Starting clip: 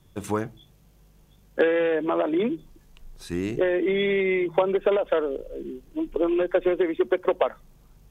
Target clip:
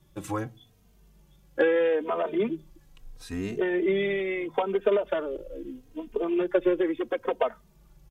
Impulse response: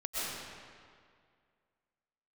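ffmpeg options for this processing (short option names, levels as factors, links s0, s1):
-filter_complex "[0:a]asplit=2[s0][s1];[s1]adelay=3,afreqshift=-0.76[s2];[s0][s2]amix=inputs=2:normalize=1"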